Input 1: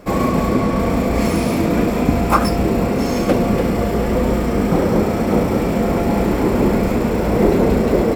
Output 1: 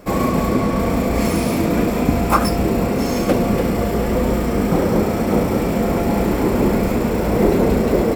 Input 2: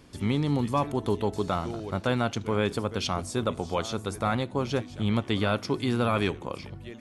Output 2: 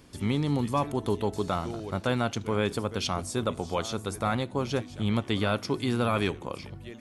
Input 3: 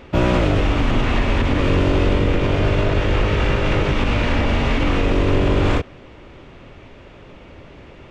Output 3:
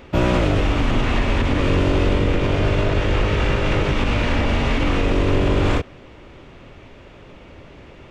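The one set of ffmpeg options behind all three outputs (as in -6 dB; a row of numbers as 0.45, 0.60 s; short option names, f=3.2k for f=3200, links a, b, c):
-af "crystalizer=i=0.5:c=0,volume=-1dB"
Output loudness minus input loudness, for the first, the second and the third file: -1.0, -1.0, -1.0 LU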